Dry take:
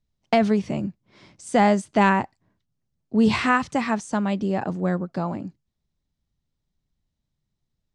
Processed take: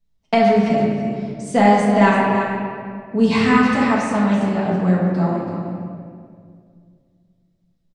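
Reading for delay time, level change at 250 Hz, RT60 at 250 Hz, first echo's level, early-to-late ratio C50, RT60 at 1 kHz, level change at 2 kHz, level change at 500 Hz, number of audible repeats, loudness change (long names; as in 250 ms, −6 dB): 335 ms, +6.5 dB, 2.5 s, −8.5 dB, −0.5 dB, 1.9 s, +4.5 dB, +6.5 dB, 1, +5.0 dB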